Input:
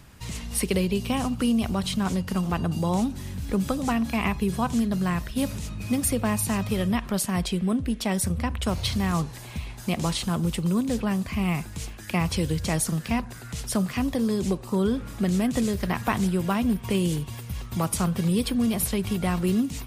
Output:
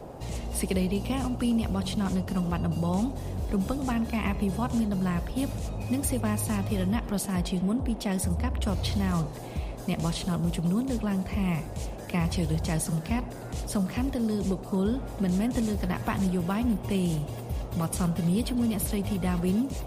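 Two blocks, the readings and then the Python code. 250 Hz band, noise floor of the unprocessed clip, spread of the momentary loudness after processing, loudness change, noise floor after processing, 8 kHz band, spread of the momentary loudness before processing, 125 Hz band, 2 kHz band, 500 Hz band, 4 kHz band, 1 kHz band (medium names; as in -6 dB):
-2.5 dB, -40 dBFS, 5 LU, -2.5 dB, -39 dBFS, -5.5 dB, 5 LU, -1.0 dB, -5.5 dB, -3.5 dB, -5.5 dB, -4.0 dB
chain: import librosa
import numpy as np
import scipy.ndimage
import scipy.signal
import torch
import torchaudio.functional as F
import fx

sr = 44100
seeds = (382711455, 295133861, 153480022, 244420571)

y = fx.low_shelf(x, sr, hz=160.0, db=8.0)
y = fx.dmg_noise_band(y, sr, seeds[0], low_hz=110.0, high_hz=770.0, level_db=-37.0)
y = y + 10.0 ** (-19.5 / 20.0) * np.pad(y, (int(107 * sr / 1000.0), 0))[:len(y)]
y = y * librosa.db_to_amplitude(-5.5)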